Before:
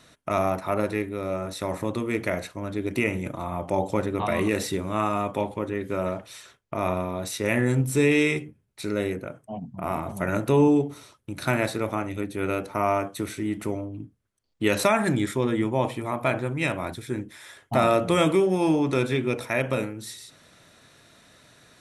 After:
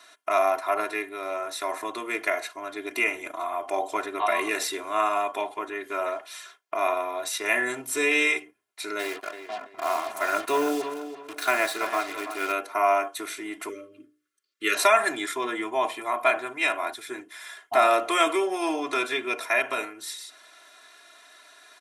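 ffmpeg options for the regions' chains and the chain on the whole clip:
-filter_complex "[0:a]asettb=1/sr,asplit=3[s0][s1][s2];[s0]atrim=end=8.994[s3];[s1]atrim=start=8.99:end=12.52,asetpts=PTS-STARTPTS,afade=t=in:d=0.004:c=qsin,afade=t=out:st=3.526:d=0.004:c=qsin,acrusher=bits=5:mix=0:aa=0.5,asplit=2[s4][s5];[s5]adelay=332,lowpass=f=3900:p=1,volume=0.316,asplit=2[s6][s7];[s7]adelay=332,lowpass=f=3900:p=1,volume=0.28,asplit=2[s8][s9];[s9]adelay=332,lowpass=f=3900:p=1,volume=0.28[s10];[s4][s6][s8][s10]amix=inputs=4:normalize=0,atrim=end_sample=155673[s11];[s2]atrim=start=12.516[s12];[s3][s11]acrossfade=d=0.004:c1=hsin:c2=qsin[s13];[s13][s12]acrossfade=d=0.004:c1=qsin:c2=hsin,asettb=1/sr,asplit=3[s14][s15][s16];[s14]atrim=end=13.694[s17];[s15]atrim=start=13.69:end=14.75,asetpts=PTS-STARTPTS,afade=t=in:d=0.004:c=qsin,afade=t=out:st=1.056:d=0.004:c=qsin,asuperstop=centerf=810:order=20:qfactor=1.6,bandreject=f=60:t=h:w=6,bandreject=f=120:t=h:w=6,bandreject=f=180:t=h:w=6,bandreject=f=240:t=h:w=6,bandreject=f=300:t=h:w=6,bandreject=f=360:t=h:w=6,bandreject=f=420:t=h:w=6,bandreject=f=480:t=h:w=6,bandreject=f=540:t=h:w=6,bandreject=f=600:t=h:w=6[s18];[s16]atrim=start=14.746[s19];[s17][s18]acrossfade=d=0.004:c1=hsin:c2=qsin[s20];[s20][s19]acrossfade=d=0.004:c1=qsin:c2=hsin,highpass=670,equalizer=f=1200:t=o:w=1.9:g=2.5,aecho=1:1:2.9:0.92"

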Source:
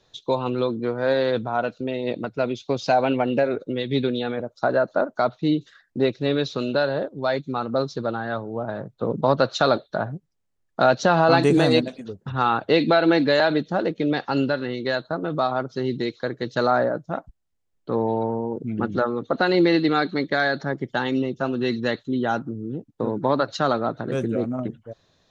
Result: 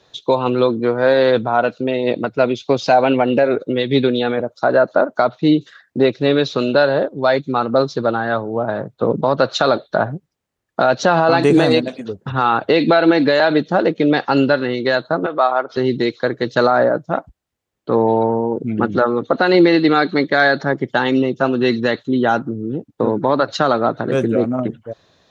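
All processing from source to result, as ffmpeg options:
-filter_complex "[0:a]asettb=1/sr,asplit=3[s0][s1][s2];[s0]atrim=end=15.264[s3];[s1]atrim=start=15.26:end=15.77,asetpts=PTS-STARTPTS,afade=t=in:d=0.004:c=qsin,afade=t=out:st=0.506:d=0.004:c=qsin,highpass=530,lowpass=2900,acompressor=mode=upward:threshold=0.0447:ratio=2.5:attack=3.2:release=140:knee=2.83:detection=peak[s4];[s2]atrim=start=15.766[s5];[s3][s4]acrossfade=d=0.004:c1=hsin:c2=qsin[s6];[s6][s5]acrossfade=d=0.004:c1=qsin:c2=hsin,highpass=48,bass=f=250:g=-4,treble=f=4000:g=-4,alimiter=limit=0.237:level=0:latency=1:release=133,volume=2.82"

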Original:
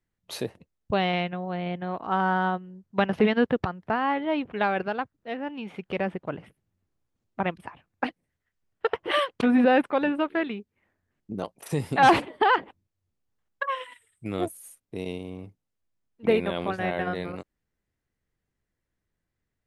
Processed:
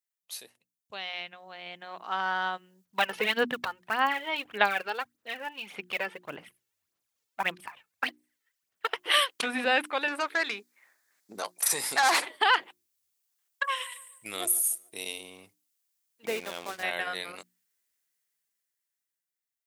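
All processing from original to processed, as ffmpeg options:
-filter_complex "[0:a]asettb=1/sr,asplit=3[s0][s1][s2];[s0]atrim=end=2.854[s3];[s1]atrim=start=2.85:end=8.91,asetpts=PTS-STARTPTS,afade=t=in:d=0.004:c=qsin,afade=t=out:st=6.056:d=0.004:c=qsin,highshelf=f=4800:g=-8.5,aphaser=in_gain=1:out_gain=1:delay=2.3:decay=0.57:speed=1.7:type=sinusoidal[s4];[s2]atrim=start=8.906[s5];[s3][s4]acrossfade=d=0.004:c1=hsin:c2=qsin[s6];[s6][s5]acrossfade=d=0.004:c1=qsin:c2=hsin,asettb=1/sr,asplit=3[s7][s8][s9];[s7]atrim=end=10.084[s10];[s8]atrim=start=10.08:end=12.28,asetpts=PTS-STARTPTS,afade=t=in:d=0.004:c=qsin,afade=t=out:st=2.196:d=0.004:c=qsin,acompressor=threshold=0.0398:ratio=1.5:attack=3.2:release=140:knee=1:detection=peak,asplit=2[s11][s12];[s12]highpass=f=720:p=1,volume=6.31,asoftclip=type=tanh:threshold=0.224[s13];[s11][s13]amix=inputs=2:normalize=0,lowpass=f=4300:p=1,volume=0.501,equalizer=f=2900:w=3.1:g=-10.5[s14];[s9]atrim=start=12.276[s15];[s10][s14]acrossfade=d=0.004:c1=hsin:c2=qsin[s16];[s16][s15]acrossfade=d=0.004:c1=qsin:c2=hsin,asettb=1/sr,asplit=3[s17][s18][s19];[s17]atrim=end=13.644[s20];[s18]atrim=start=13.64:end=15.21,asetpts=PTS-STARTPTS,afade=t=in:d=0.004:c=qsin,afade=t=out:st=1.566:d=0.004:c=qsin,highshelf=f=8200:g=6,asplit=2[s21][s22];[s22]adelay=146,lowpass=f=2400:p=1,volume=0.126,asplit=2[s23][s24];[s24]adelay=146,lowpass=f=2400:p=1,volume=0.42,asplit=2[s25][s26];[s26]adelay=146,lowpass=f=2400:p=1,volume=0.42[s27];[s21][s23][s25][s27]amix=inputs=4:normalize=0,atrim=end_sample=69237[s28];[s19]atrim=start=15.206[s29];[s20][s28]acrossfade=d=0.004:c1=hsin:c2=qsin[s30];[s30][s29]acrossfade=d=0.004:c1=qsin:c2=hsin,asettb=1/sr,asplit=3[s31][s32][s33];[s31]atrim=end=16.264[s34];[s32]atrim=start=16.26:end=16.83,asetpts=PTS-STARTPTS,afade=t=in:d=0.004:c=qsin,afade=t=out:st=0.566:d=0.004:c=qsin,lowpass=f=1100:p=1,aeval=exprs='sgn(val(0))*max(abs(val(0))-0.00708,0)':c=same[s35];[s33]atrim=start=16.826[s36];[s34][s35]acrossfade=d=0.004:c1=hsin:c2=qsin[s37];[s37][s36]acrossfade=d=0.004:c1=qsin:c2=hsin,aderivative,bandreject=f=60:t=h:w=6,bandreject=f=120:t=h:w=6,bandreject=f=180:t=h:w=6,bandreject=f=240:t=h:w=6,bandreject=f=300:t=h:w=6,bandreject=f=360:t=h:w=6,dynaudnorm=f=520:g=7:m=5.01"

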